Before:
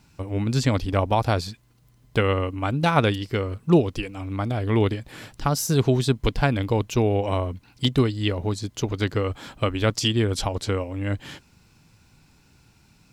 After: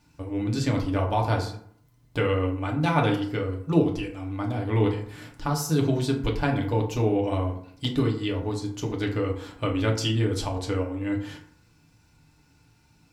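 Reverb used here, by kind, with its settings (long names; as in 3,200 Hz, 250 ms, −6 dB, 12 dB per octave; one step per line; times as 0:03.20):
feedback delay network reverb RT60 0.61 s, low-frequency decay 1×, high-frequency decay 0.5×, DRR −0.5 dB
level −7 dB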